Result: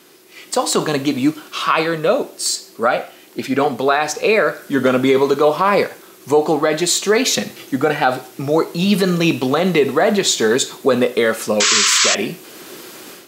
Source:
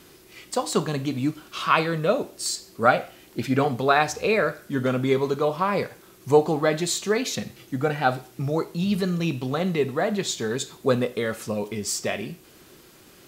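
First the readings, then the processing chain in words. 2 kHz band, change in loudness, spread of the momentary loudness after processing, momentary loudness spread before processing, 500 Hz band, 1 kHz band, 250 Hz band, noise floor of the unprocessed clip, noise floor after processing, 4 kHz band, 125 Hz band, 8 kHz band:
+8.5 dB, +8.0 dB, 9 LU, 9 LU, +8.0 dB, +6.0 dB, +7.5 dB, −52 dBFS, −44 dBFS, +13.0 dB, +2.5 dB, +12.5 dB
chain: high-pass filter 250 Hz 12 dB per octave
automatic gain control gain up to 13 dB
sound drawn into the spectrogram noise, 0:11.60–0:12.15, 1,000–8,000 Hz −11 dBFS
brickwall limiter −8 dBFS, peak gain reduction 9.5 dB
level +3.5 dB

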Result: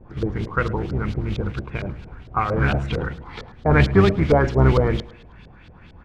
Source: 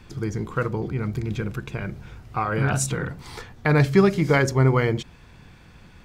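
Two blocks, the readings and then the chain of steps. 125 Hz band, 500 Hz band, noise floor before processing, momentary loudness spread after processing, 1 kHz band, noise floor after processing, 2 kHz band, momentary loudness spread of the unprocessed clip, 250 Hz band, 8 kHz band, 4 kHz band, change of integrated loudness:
+2.0 dB, +2.0 dB, −49 dBFS, 14 LU, +3.0 dB, −46 dBFS, +1.0 dB, 15 LU, +1.5 dB, below −15 dB, +2.0 dB, +2.0 dB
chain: sub-octave generator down 1 octave, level −1 dB
noise that follows the level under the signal 17 dB
auto-filter low-pass saw up 4.4 Hz 480–4,400 Hz
on a send: repeating echo 107 ms, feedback 48%, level −21 dB

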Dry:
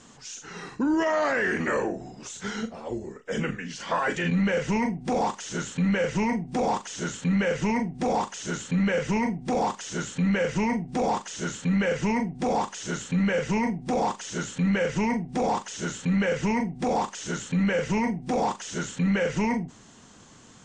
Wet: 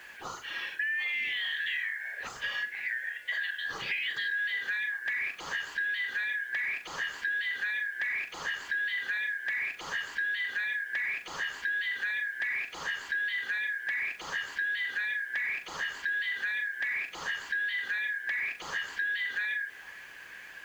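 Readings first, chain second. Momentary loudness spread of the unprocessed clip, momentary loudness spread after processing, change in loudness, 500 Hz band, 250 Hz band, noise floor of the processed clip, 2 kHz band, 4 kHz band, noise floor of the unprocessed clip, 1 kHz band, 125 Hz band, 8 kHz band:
8 LU, 5 LU, −4.5 dB, −26.0 dB, below −30 dB, −47 dBFS, +5.0 dB, +1.0 dB, −51 dBFS, −17.5 dB, below −30 dB, −13.5 dB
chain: band-splitting scrambler in four parts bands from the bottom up 4123
low-pass filter 2,800 Hz 12 dB per octave
low-shelf EQ 120 Hz −5 dB
in parallel at −1.5 dB: brickwall limiter −25 dBFS, peak gain reduction 8.5 dB
on the sum: downward compressor 5 to 1, threshold −31 dBFS, peak gain reduction 11.5 dB
bit-depth reduction 10 bits, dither none
on a send: echo through a band-pass that steps 396 ms, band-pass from 340 Hz, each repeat 0.7 octaves, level −11.5 dB

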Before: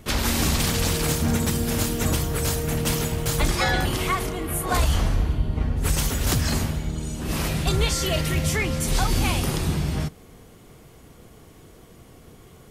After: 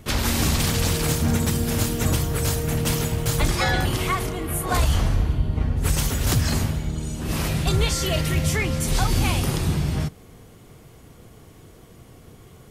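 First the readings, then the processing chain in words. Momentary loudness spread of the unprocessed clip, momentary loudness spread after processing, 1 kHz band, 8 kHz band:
5 LU, 5 LU, 0.0 dB, 0.0 dB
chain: parametric band 110 Hz +4.5 dB 0.73 octaves

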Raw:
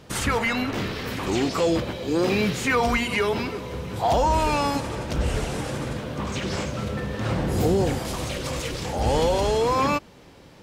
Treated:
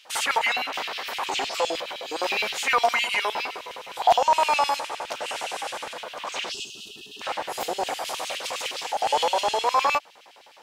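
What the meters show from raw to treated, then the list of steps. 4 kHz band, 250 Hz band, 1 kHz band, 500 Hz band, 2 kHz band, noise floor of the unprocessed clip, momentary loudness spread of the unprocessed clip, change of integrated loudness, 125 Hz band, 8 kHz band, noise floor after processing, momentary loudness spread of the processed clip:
+4.0 dB, −18.5 dB, +3.0 dB, −5.0 dB, +1.5 dB, −48 dBFS, 8 LU, −1.0 dB, below −25 dB, +0.5 dB, −51 dBFS, 12 LU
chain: auto-filter high-pass square 9.7 Hz 770–2,800 Hz
gain on a spectral selection 0:06.52–0:07.22, 450–2,500 Hz −29 dB

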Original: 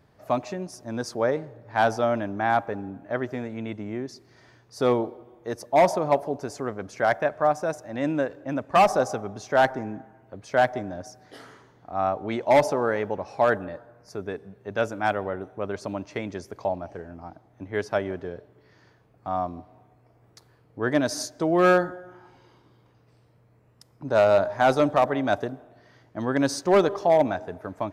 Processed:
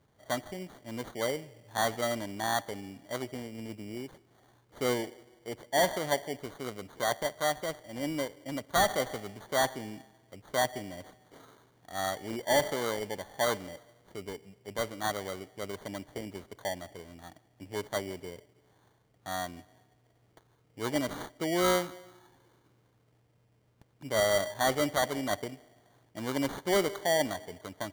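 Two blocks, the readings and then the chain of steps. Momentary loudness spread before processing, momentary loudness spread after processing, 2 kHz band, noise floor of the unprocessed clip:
16 LU, 17 LU, −5.5 dB, −60 dBFS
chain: decimation without filtering 17×
level −8 dB

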